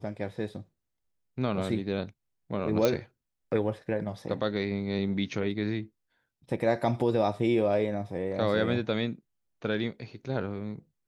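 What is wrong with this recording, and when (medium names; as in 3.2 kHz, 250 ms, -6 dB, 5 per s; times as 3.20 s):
2.85 s: pop -11 dBFS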